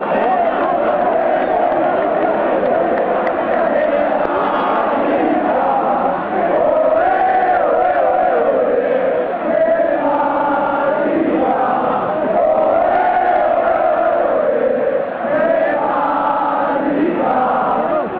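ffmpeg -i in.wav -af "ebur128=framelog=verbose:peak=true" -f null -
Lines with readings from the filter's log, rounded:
Integrated loudness:
  I:         -15.3 LUFS
  Threshold: -25.3 LUFS
Loudness range:
  LRA:         1.3 LU
  Threshold: -35.2 LUFS
  LRA low:   -15.8 LUFS
  LRA high:  -14.5 LUFS
True peak:
  Peak:       -3.5 dBFS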